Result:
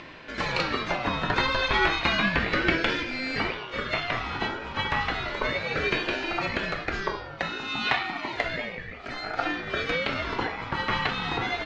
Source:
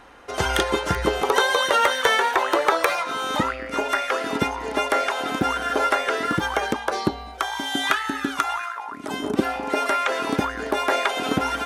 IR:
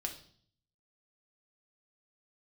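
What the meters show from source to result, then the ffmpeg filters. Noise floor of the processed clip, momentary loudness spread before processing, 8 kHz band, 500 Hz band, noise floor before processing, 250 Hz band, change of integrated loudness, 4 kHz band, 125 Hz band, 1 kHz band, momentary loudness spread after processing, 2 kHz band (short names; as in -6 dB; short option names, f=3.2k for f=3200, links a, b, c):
-40 dBFS, 8 LU, -15.5 dB, -7.5 dB, -36 dBFS, -5.0 dB, -4.5 dB, -3.0 dB, -0.5 dB, -7.0 dB, 8 LU, -2.0 dB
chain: -filter_complex "[0:a]acrossover=split=160[a][b];[b]highpass=f=450:p=1[c];[a][c]amix=inputs=2:normalize=0,aecho=1:1:692:0.0668,acompressor=mode=upward:threshold=-33dB:ratio=2.5,lowpass=f=4.5k:w=0.5412,lowpass=f=4.5k:w=1.3066[d];[1:a]atrim=start_sample=2205[e];[d][e]afir=irnorm=-1:irlink=0,aeval=exprs='val(0)*sin(2*PI*780*n/s+780*0.35/0.32*sin(2*PI*0.32*n/s))':c=same"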